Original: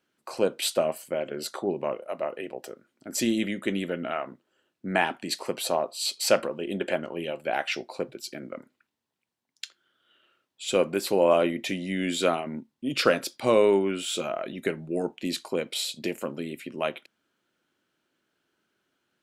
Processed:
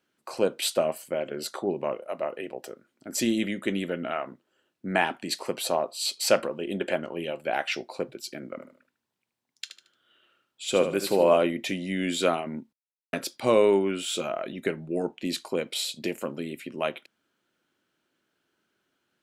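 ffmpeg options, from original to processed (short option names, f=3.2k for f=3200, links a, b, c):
-filter_complex "[0:a]asettb=1/sr,asplit=3[a][b][c];[a]atrim=end=8.504[d];[b]atrim=start=8.5:end=11.37,asetpts=PTS-STARTPTS,afade=t=in:d=0.004:c=qsin,afade=t=out:st=2.866:d=0.004:c=qsin,aecho=1:1:75|150|225|300:0.355|0.114|0.0363|0.0116,atrim=end_sample=126567[e];[c]atrim=start=11.366[f];[d][e]acrossfade=d=0.004:c1=hsin:c2=qsin[g];[g][f]acrossfade=d=0.004:c1=qsin:c2=hsin,asettb=1/sr,asplit=3[h][i][j];[h]atrim=end=14.534[k];[i]atrim=start=14.53:end=15.29,asetpts=PTS-STARTPTS,afade=t=in:d=0.004:c=qsin,afade=t=out:st=0.756:d=0.004:c=qsin,highshelf=f=6.4k:g=-5[l];[j]atrim=start=15.286[m];[k][l]acrossfade=d=0.004:c1=hsin:c2=qsin[n];[n][m]acrossfade=d=0.004:c1=qsin:c2=hsin,asplit=3[o][p][q];[o]atrim=end=12.73,asetpts=PTS-STARTPTS,afade=t=out:st=12.726:d=0.004:c=hsin[r];[p]atrim=start=12.73:end=13.13,asetpts=PTS-STARTPTS,volume=0[s];[q]atrim=start=13.13,asetpts=PTS-STARTPTS,afade=t=in:d=0.004:c=hsin[t];[r][s][t]concat=n=3:v=0:a=1"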